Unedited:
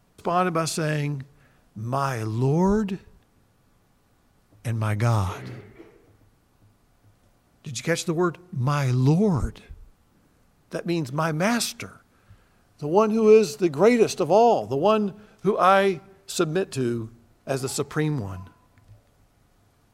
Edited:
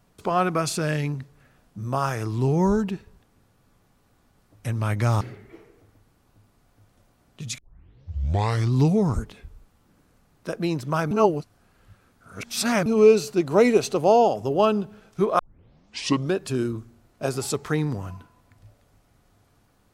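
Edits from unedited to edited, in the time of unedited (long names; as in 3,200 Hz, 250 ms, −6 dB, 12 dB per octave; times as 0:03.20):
0:05.21–0:05.47: remove
0:07.84: tape start 1.16 s
0:11.37–0:13.12: reverse
0:15.65: tape start 0.95 s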